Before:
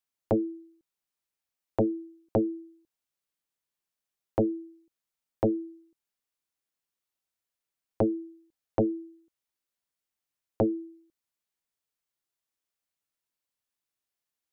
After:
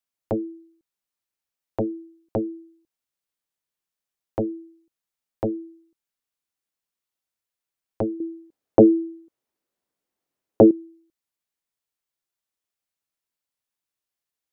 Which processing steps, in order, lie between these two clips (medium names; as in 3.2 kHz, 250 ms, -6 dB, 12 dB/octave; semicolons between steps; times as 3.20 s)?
8.20–10.71 s: peaking EQ 360 Hz +14 dB 3 oct